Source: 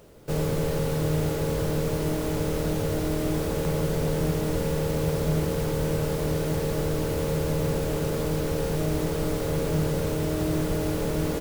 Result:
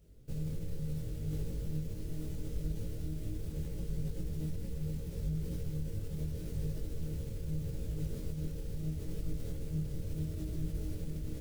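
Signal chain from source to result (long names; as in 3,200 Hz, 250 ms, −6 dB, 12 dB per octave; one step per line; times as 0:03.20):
guitar amp tone stack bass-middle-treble 10-0-1
brickwall limiter −35.5 dBFS, peak gain reduction 9.5 dB
micro pitch shift up and down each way 26 cents
level +9.5 dB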